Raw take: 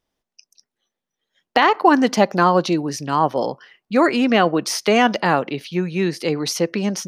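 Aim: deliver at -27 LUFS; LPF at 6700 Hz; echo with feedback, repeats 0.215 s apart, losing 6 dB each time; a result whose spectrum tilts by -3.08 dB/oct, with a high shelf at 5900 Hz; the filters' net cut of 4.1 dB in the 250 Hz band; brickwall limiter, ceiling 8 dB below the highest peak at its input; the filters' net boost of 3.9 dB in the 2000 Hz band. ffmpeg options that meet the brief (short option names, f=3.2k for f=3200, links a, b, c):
-af "lowpass=6.7k,equalizer=f=250:t=o:g=-5.5,equalizer=f=2k:t=o:g=5.5,highshelf=f=5.9k:g=-6.5,alimiter=limit=-8.5dB:level=0:latency=1,aecho=1:1:215|430|645|860|1075|1290:0.501|0.251|0.125|0.0626|0.0313|0.0157,volume=-6.5dB"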